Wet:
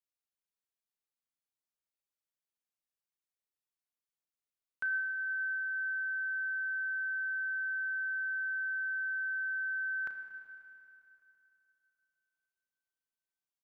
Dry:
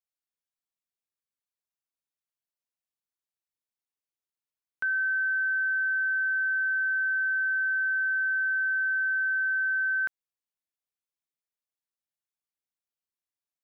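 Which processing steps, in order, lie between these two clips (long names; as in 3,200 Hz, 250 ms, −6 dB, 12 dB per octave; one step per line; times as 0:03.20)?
double-tracking delay 34 ms −13 dB
four-comb reverb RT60 2.9 s, combs from 26 ms, DRR 5.5 dB
level −5.5 dB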